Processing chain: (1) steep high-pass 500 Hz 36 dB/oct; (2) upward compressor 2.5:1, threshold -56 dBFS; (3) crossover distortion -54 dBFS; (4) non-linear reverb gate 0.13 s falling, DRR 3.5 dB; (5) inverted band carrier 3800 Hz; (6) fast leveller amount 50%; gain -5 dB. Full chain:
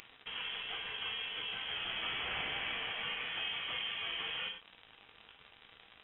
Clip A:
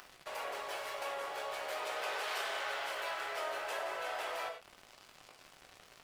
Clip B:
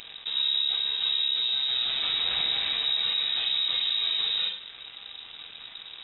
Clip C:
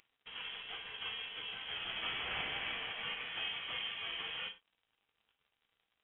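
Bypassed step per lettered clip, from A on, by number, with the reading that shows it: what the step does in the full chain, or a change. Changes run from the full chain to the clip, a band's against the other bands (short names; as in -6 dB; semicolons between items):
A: 5, 500 Hz band +14.0 dB; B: 1, 4 kHz band +13.5 dB; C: 6, momentary loudness spread change +3 LU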